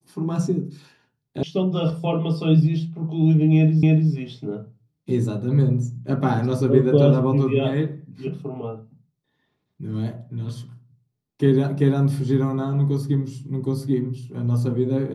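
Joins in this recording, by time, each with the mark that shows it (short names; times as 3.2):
1.43 sound cut off
3.83 repeat of the last 0.29 s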